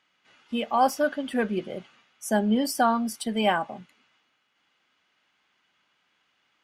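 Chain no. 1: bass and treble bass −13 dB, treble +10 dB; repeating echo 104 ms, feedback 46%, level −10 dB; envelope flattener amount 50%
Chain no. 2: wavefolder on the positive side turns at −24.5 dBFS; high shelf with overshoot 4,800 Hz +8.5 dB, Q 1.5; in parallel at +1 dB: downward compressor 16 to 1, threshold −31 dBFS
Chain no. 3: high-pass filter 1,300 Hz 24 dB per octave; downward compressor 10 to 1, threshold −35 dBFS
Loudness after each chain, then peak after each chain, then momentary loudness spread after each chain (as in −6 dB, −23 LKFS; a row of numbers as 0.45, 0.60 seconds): −23.0, −24.0, −39.5 LKFS; −7.5, −7.5, −23.0 dBFS; 20, 12, 13 LU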